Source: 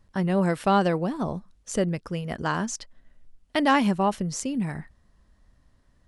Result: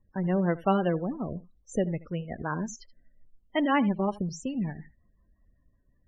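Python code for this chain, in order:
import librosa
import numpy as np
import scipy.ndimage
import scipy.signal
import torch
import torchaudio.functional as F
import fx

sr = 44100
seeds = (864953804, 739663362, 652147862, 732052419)

p1 = fx.rotary(x, sr, hz=5.5)
p2 = p1 + 10.0 ** (-17.0 / 20.0) * np.pad(p1, (int(78 * sr / 1000.0), 0))[:len(p1)]
p3 = fx.backlash(p2, sr, play_db=-24.5)
p4 = p2 + (p3 * 10.0 ** (-7.0 / 20.0))
p5 = fx.spec_topn(p4, sr, count=32)
y = p5 * 10.0 ** (-4.0 / 20.0)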